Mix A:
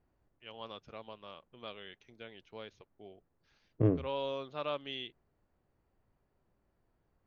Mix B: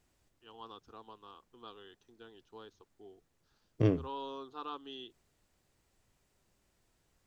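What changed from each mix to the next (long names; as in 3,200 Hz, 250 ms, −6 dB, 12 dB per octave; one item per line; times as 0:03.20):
first voice: add phaser with its sweep stopped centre 590 Hz, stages 6
second voice: remove low-pass filter 1,300 Hz 12 dB per octave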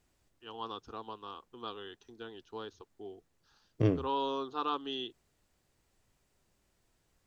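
first voice +8.5 dB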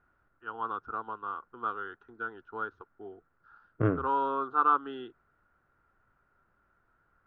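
master: add low-pass with resonance 1,400 Hz, resonance Q 11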